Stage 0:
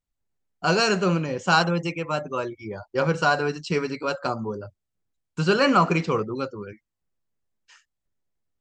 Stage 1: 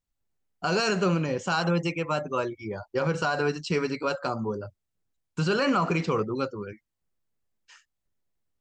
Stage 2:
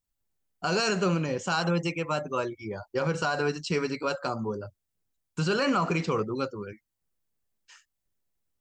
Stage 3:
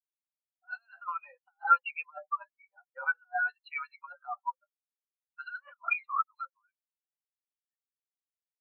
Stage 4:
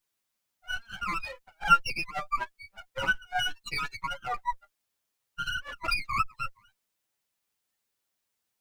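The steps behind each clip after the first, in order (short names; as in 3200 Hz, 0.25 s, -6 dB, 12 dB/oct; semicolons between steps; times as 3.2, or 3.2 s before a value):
limiter -16 dBFS, peak gain reduction 9 dB
high shelf 7400 Hz +7.5 dB; gain -1.5 dB
elliptic band-pass 760–4000 Hz, stop band 50 dB; negative-ratio compressor -35 dBFS, ratio -0.5; spectral expander 4:1; gain +7.5 dB
minimum comb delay 9.3 ms; in parallel at +1 dB: negative-ratio compressor -45 dBFS, ratio -1; on the sum: gain +3 dB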